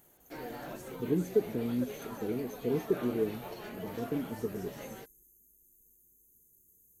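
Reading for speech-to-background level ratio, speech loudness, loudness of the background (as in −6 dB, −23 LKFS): 9.5 dB, −35.0 LKFS, −44.5 LKFS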